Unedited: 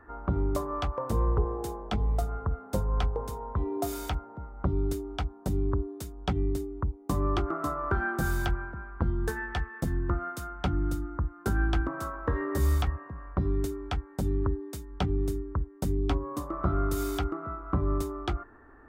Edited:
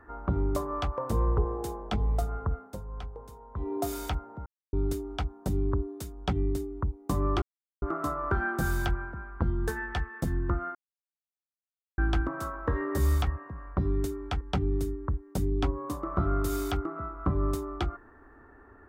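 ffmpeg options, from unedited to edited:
ffmpeg -i in.wav -filter_complex "[0:a]asplit=9[link_01][link_02][link_03][link_04][link_05][link_06][link_07][link_08][link_09];[link_01]atrim=end=2.76,asetpts=PTS-STARTPTS,afade=type=out:start_time=2.55:duration=0.21:silence=0.266073[link_10];[link_02]atrim=start=2.76:end=3.51,asetpts=PTS-STARTPTS,volume=-11.5dB[link_11];[link_03]atrim=start=3.51:end=4.46,asetpts=PTS-STARTPTS,afade=type=in:duration=0.21:silence=0.266073,afade=type=out:start_time=0.946:duration=0.004:curve=hsin[link_12];[link_04]atrim=start=4.46:end=4.73,asetpts=PTS-STARTPTS,volume=0[link_13];[link_05]atrim=start=4.73:end=7.42,asetpts=PTS-STARTPTS,afade=type=in:duration=0.004:curve=hsin,afade=type=out:start_time=2.686:duration=0.004:curve=hsin,apad=pad_dur=0.4[link_14];[link_06]atrim=start=7.42:end=10.35,asetpts=PTS-STARTPTS,afade=type=in:duration=0.004:curve=hsin,afade=type=out:start_time=2.926:duration=0.004:curve=hsin[link_15];[link_07]atrim=start=10.35:end=11.58,asetpts=PTS-STARTPTS,volume=0[link_16];[link_08]atrim=start=11.58:end=14.012,asetpts=PTS-STARTPTS,afade=type=in:duration=0.004:curve=hsin[link_17];[link_09]atrim=start=14.878[link_18];[link_10][link_11][link_12][link_13][link_14][link_15][link_16][link_17]concat=n=8:v=0:a=1[link_19];[link_19][link_18]acrossfade=duration=0.004:curve1=hsin:curve2=hsin" out.wav

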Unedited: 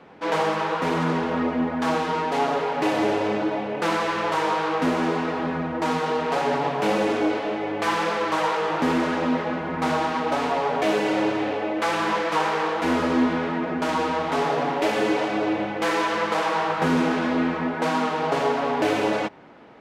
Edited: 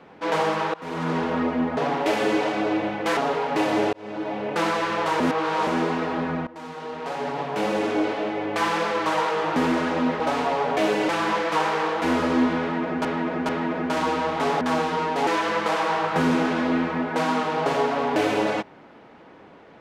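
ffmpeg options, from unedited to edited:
ffmpeg -i in.wav -filter_complex "[0:a]asplit=14[link_01][link_02][link_03][link_04][link_05][link_06][link_07][link_08][link_09][link_10][link_11][link_12][link_13][link_14];[link_01]atrim=end=0.74,asetpts=PTS-STARTPTS,afade=type=out:start_time=0.736:duration=0.004:curve=hsin:silence=0.0707946[link_15];[link_02]atrim=start=0.74:end=1.772,asetpts=PTS-STARTPTS,afade=type=in:duration=0.46:silence=0.0707946[link_16];[link_03]atrim=start=14.528:end=15.932[link_17];[link_04]atrim=start=2.428:end=3.19,asetpts=PTS-STARTPTS,afade=type=out:start_time=0.758:duration=0.004:curve=hsin[link_18];[link_05]atrim=start=3.19:end=4.462,asetpts=PTS-STARTPTS,afade=type=in:duration=0.5[link_19];[link_06]atrim=start=4.458:end=4.932,asetpts=PTS-STARTPTS,areverse[link_20];[link_07]atrim=start=4.928:end=5.73,asetpts=PTS-STARTPTS,afade=type=out:start_time=0.798:duration=0.004:curve=hsin:silence=0.11885[link_21];[link_08]atrim=start=5.73:end=9.462,asetpts=PTS-STARTPTS,afade=type=in:duration=1.67:silence=0.11885[link_22];[link_09]atrim=start=10.248:end=11.142[link_23];[link_10]atrim=start=11.888:end=13.852[link_24];[link_11]atrim=start=13.408:end=13.852[link_25];[link_12]atrim=start=13.408:end=14.532[link_26];[link_13]atrim=start=1.768:end=2.432[link_27];[link_14]atrim=start=15.928[link_28];[link_15][link_16]concat=n=2:v=0:a=1[link_29];[link_29][link_17]acrossfade=duration=0.004:curve1=hsin:curve2=hsin[link_30];[link_18][link_19]concat=n=2:v=0:a=1[link_31];[link_30][link_31]acrossfade=duration=0.004:curve1=hsin:curve2=hsin[link_32];[link_32][link_20]acrossfade=duration=0.004:curve1=hsin:curve2=hsin[link_33];[link_21][link_22]concat=n=2:v=0:a=1[link_34];[link_33][link_34]acrossfade=duration=0.004:curve1=hsin:curve2=hsin[link_35];[link_35][link_23]acrossfade=duration=0.004:curve1=hsin:curve2=hsin[link_36];[link_36][link_24]acrossfade=duration=0.004:curve1=hsin:curve2=hsin[link_37];[link_37][link_25]acrossfade=duration=0.004:curve1=hsin:curve2=hsin[link_38];[link_38][link_26]acrossfade=duration=0.004:curve1=hsin:curve2=hsin[link_39];[link_39][link_27]acrossfade=duration=0.004:curve1=hsin:curve2=hsin[link_40];[link_40][link_28]acrossfade=duration=0.004:curve1=hsin:curve2=hsin" out.wav

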